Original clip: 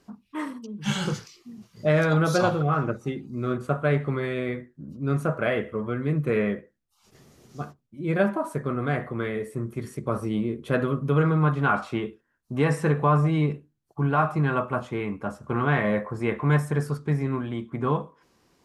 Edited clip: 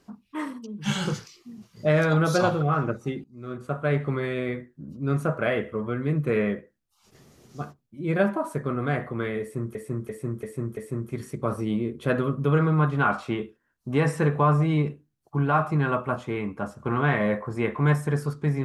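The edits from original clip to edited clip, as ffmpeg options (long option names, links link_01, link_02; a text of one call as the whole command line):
ffmpeg -i in.wav -filter_complex "[0:a]asplit=6[link_01][link_02][link_03][link_04][link_05][link_06];[link_01]atrim=end=3.24,asetpts=PTS-STARTPTS,afade=type=out:start_time=3.236:duration=0.004:curve=hsin:silence=0.0794328[link_07];[link_02]atrim=start=3.24:end=9.752,asetpts=PTS-STARTPTS,afade=type=in:duration=0.79:silence=0.0794328[link_08];[link_03]atrim=start=9.408:end=9.752[link_09];[link_04]atrim=start=9.408:end=9.752[link_10];[link_05]atrim=start=9.408:end=9.752[link_11];[link_06]atrim=start=9.408[link_12];[link_07][link_08]concat=n=2:v=0:a=1[link_13];[link_13][link_09]acrossfade=duration=0.004:curve1=hsin:curve2=hsin[link_14];[link_14][link_10]acrossfade=duration=0.004:curve1=hsin:curve2=hsin[link_15];[link_15][link_11]acrossfade=duration=0.004:curve1=hsin:curve2=hsin[link_16];[link_16][link_12]acrossfade=duration=0.004:curve1=hsin:curve2=hsin" out.wav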